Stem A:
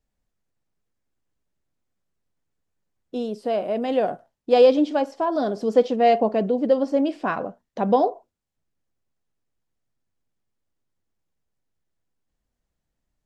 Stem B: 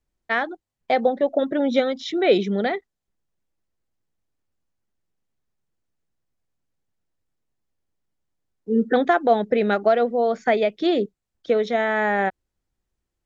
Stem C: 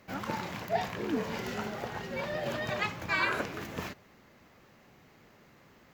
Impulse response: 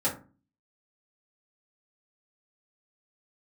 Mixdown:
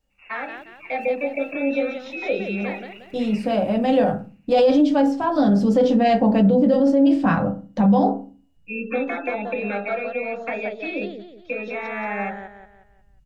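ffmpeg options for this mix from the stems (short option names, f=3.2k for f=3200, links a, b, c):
-filter_complex "[0:a]asubboost=boost=11:cutoff=120,volume=0.5dB,asplit=2[a][b];[b]volume=-7dB[c];[1:a]volume=-8.5dB,asplit=3[d][e][f];[e]volume=-9.5dB[g];[f]volume=-7dB[h];[2:a]acrusher=samples=30:mix=1:aa=0.000001:lfo=1:lforange=18:lforate=3.2,adelay=100,volume=-13.5dB,asplit=2[i][j];[j]volume=-12.5dB[k];[d][i]amix=inputs=2:normalize=0,lowpass=f=2.5k:t=q:w=0.5098,lowpass=f=2.5k:t=q:w=0.6013,lowpass=f=2.5k:t=q:w=0.9,lowpass=f=2.5k:t=q:w=2.563,afreqshift=-2900,acompressor=threshold=-31dB:ratio=6,volume=0dB[l];[3:a]atrim=start_sample=2205[m];[c][g]amix=inputs=2:normalize=0[n];[n][m]afir=irnorm=-1:irlink=0[o];[h][k]amix=inputs=2:normalize=0,aecho=0:1:180|360|540|720|900:1|0.38|0.144|0.0549|0.0209[p];[a][l][o][p]amix=inputs=4:normalize=0,alimiter=limit=-9.5dB:level=0:latency=1:release=14"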